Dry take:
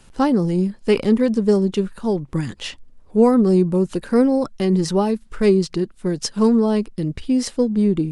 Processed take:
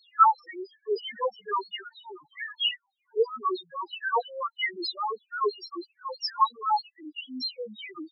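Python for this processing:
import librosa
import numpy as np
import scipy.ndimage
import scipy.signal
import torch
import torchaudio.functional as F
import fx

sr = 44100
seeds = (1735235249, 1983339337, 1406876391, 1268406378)

y = fx.filter_lfo_highpass(x, sr, shape='saw_down', hz=3.1, low_hz=770.0, high_hz=4500.0, q=5.6)
y = fx.spec_topn(y, sr, count=1)
y = F.gain(torch.from_numpy(y), 8.5).numpy()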